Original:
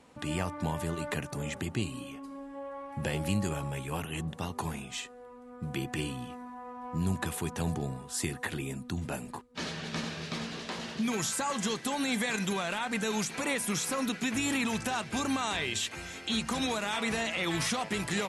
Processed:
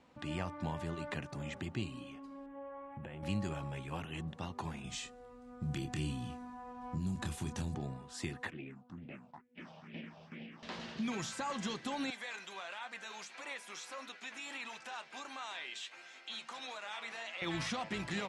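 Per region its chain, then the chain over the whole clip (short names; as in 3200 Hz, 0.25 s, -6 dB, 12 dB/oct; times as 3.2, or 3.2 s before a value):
2.46–3.23 Butterworth band-stop 5000 Hz, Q 1.2 + compressor 10:1, threshold -35 dBFS + high shelf 5100 Hz -11.5 dB
4.84–7.75 tone controls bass +10 dB, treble +12 dB + compressor 3:1, threshold -29 dBFS + doubler 27 ms -7 dB
8.5–10.63 minimum comb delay 0.36 ms + phaser stages 4, 2.2 Hz, lowest notch 310–1200 Hz + BPF 220–2400 Hz
12.1–17.42 HPF 600 Hz + flange 1.5 Hz, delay 6.3 ms, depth 7.1 ms, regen +65%
whole clip: LPF 5200 Hz 12 dB/oct; notch 440 Hz, Q 12; gain -6 dB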